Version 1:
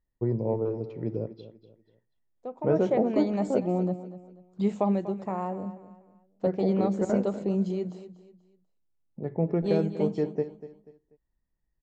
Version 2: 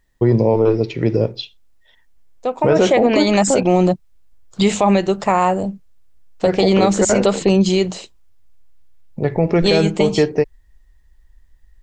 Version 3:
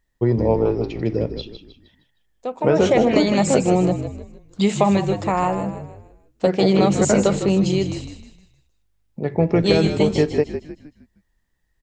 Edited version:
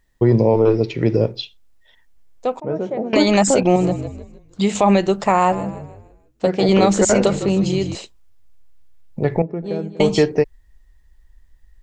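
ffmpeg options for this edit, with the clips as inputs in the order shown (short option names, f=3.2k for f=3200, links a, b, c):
-filter_complex "[0:a]asplit=2[a][b];[2:a]asplit=3[c][d][e];[1:a]asplit=6[f][g][h][i][j][k];[f]atrim=end=2.602[l];[a]atrim=start=2.598:end=3.132[m];[g]atrim=start=3.128:end=3.762[n];[c]atrim=start=3.758:end=4.752[o];[h]atrim=start=4.748:end=5.522[p];[d]atrim=start=5.518:end=6.692[q];[i]atrim=start=6.688:end=7.272[r];[e]atrim=start=7.268:end=7.952[s];[j]atrim=start=7.948:end=9.422[t];[b]atrim=start=9.418:end=10.002[u];[k]atrim=start=9.998[v];[l][m]acrossfade=d=0.004:c1=hsin:c2=hsin[w];[w][n]acrossfade=d=0.004:c1=hsin:c2=hsin[x];[x][o]acrossfade=d=0.004:c1=hsin:c2=hsin[y];[y][p]acrossfade=d=0.004:c1=hsin:c2=hsin[z];[z][q]acrossfade=d=0.004:c1=hsin:c2=hsin[aa];[aa][r]acrossfade=d=0.004:c1=hsin:c2=hsin[ab];[ab][s]acrossfade=d=0.004:c1=hsin:c2=hsin[ac];[ac][t]acrossfade=d=0.004:c1=hsin:c2=hsin[ad];[ad][u]acrossfade=d=0.004:c1=hsin:c2=hsin[ae];[ae][v]acrossfade=d=0.004:c1=hsin:c2=hsin"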